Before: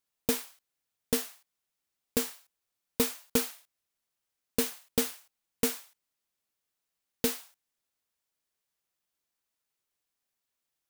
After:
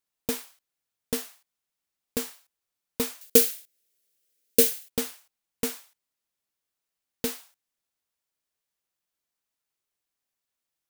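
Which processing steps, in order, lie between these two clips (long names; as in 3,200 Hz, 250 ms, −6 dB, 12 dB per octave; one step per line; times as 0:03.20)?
0:03.21–0:04.90: drawn EQ curve 160 Hz 0 dB, 480 Hz +12 dB, 990 Hz −9 dB, 1,500 Hz +2 dB, 3,000 Hz +7 dB, 6,600 Hz +10 dB, 15,000 Hz +14 dB
level −1 dB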